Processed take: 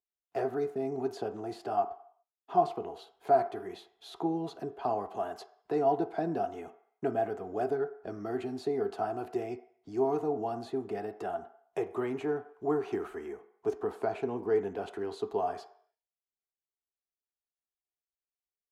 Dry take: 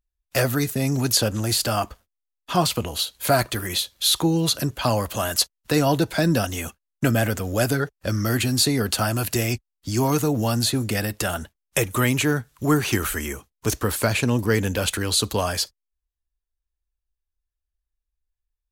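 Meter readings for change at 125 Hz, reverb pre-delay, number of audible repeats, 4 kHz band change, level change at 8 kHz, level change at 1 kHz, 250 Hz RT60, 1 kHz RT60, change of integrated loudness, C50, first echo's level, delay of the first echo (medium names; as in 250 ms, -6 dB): -23.0 dB, 3 ms, no echo, -29.0 dB, under -35 dB, -5.0 dB, 0.40 s, 0.60 s, -11.0 dB, 14.0 dB, no echo, no echo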